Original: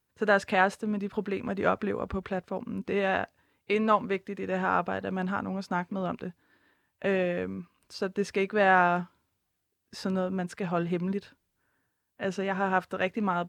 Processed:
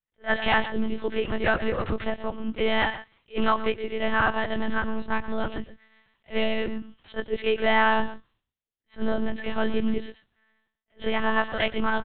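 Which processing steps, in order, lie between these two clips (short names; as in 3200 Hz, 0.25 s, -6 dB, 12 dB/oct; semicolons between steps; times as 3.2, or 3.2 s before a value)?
frequency quantiser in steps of 2 st; gate with hold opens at -58 dBFS; low shelf 120 Hz +8.5 dB; in parallel at +3 dB: limiter -19 dBFS, peak gain reduction 10 dB; on the sum: wide varispeed 1.12×; on a send: echo 0.123 s -13 dB; on the sum: monotone LPC vocoder at 8 kHz 220 Hz; attack slew limiter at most 360 dB/s; gain -3.5 dB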